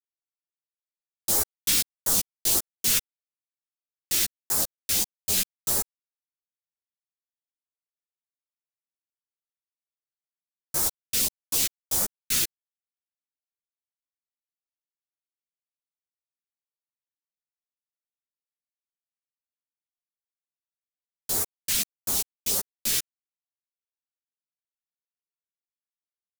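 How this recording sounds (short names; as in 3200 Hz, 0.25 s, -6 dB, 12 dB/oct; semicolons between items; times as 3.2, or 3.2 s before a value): phasing stages 2, 1.6 Hz, lowest notch 800–2700 Hz; a quantiser's noise floor 6-bit, dither none; a shimmering, thickened sound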